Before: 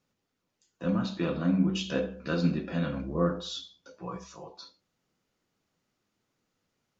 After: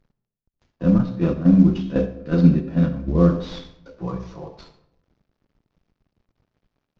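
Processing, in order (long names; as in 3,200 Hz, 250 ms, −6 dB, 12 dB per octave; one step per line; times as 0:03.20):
variable-slope delta modulation 32 kbit/s
0:00.98–0:03.08: noise gate −29 dBFS, range −9 dB
spectral tilt −3.5 dB per octave
convolution reverb RT60 0.75 s, pre-delay 60 ms, DRR 12.5 dB
level +4.5 dB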